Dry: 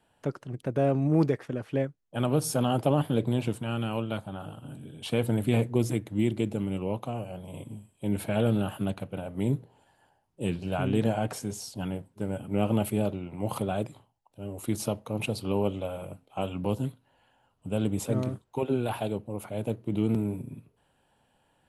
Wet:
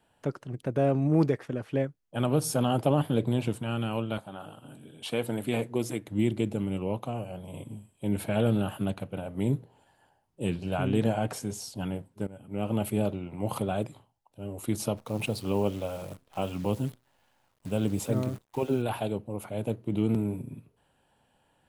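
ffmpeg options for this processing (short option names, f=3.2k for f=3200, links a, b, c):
-filter_complex "[0:a]asettb=1/sr,asplit=3[a][b][c];[a]atrim=end=4.184[d];[b]atrim=start=4.18:end=6.08,asetpts=PTS-STARTPTS,afade=t=in:d=0.004:c=qsin,afade=t=out:st=1.896:d=0.004:c=qsin,highpass=f=320:p=1[e];[c]atrim=start=6.076[f];[d][e]acrossfade=d=0.004:c1=hsin:c2=qsin[g];[g][f]acrossfade=d=0.004:c1=qsin:c2=hsin,asplit=3[h][i][j];[h]afade=t=out:st=14.96:d=0.02[k];[i]acrusher=bits=9:dc=4:mix=0:aa=0.000001,afade=t=in:st=14.96:d=0.02,afade=t=out:st=18.81:d=0.02[l];[j]afade=t=in:st=18.81:d=0.02[m];[k][l][m]amix=inputs=3:normalize=0,asplit=2[n][o];[n]atrim=end=12.27,asetpts=PTS-STARTPTS,afade=t=out:st=12.266:d=0.004:c=hsin:silence=0.133352[p];[o]atrim=start=12.27,asetpts=PTS-STARTPTS,afade=t=in:d=0.71:silence=0.133352[q];[p][q]concat=n=2:v=0:a=1"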